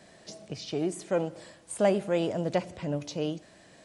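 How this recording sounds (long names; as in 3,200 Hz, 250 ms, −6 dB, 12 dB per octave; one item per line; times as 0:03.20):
background noise floor −56 dBFS
spectral slope −5.5 dB per octave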